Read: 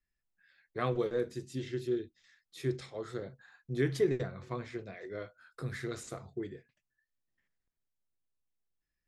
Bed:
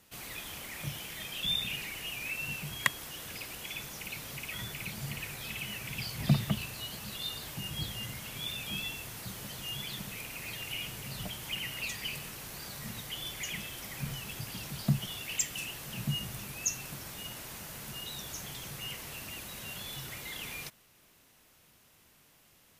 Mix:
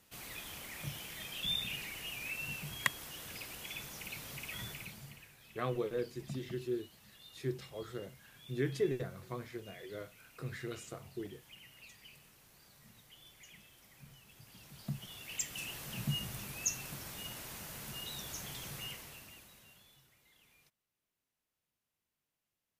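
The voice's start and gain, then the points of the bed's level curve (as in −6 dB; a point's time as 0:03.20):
4.80 s, −4.0 dB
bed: 0:04.70 −4 dB
0:05.32 −19 dB
0:14.27 −19 dB
0:15.75 −2.5 dB
0:18.79 −2.5 dB
0:20.13 −26.5 dB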